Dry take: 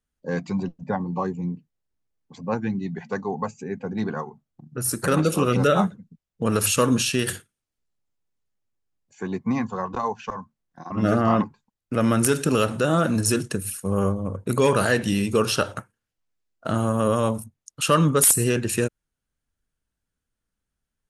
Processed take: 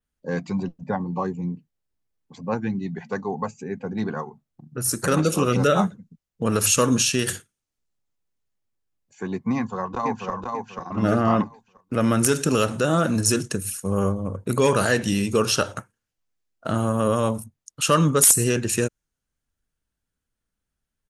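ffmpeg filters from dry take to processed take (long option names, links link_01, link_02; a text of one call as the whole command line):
ffmpeg -i in.wav -filter_complex "[0:a]asplit=2[link_01][link_02];[link_02]afade=type=in:start_time=9.56:duration=0.01,afade=type=out:start_time=10.33:duration=0.01,aecho=0:1:490|980|1470|1960:0.668344|0.200503|0.060151|0.0180453[link_03];[link_01][link_03]amix=inputs=2:normalize=0,adynamicequalizer=threshold=0.00708:dfrequency=6400:dqfactor=2.1:tfrequency=6400:tqfactor=2.1:attack=5:release=100:ratio=0.375:range=3.5:mode=boostabove:tftype=bell" out.wav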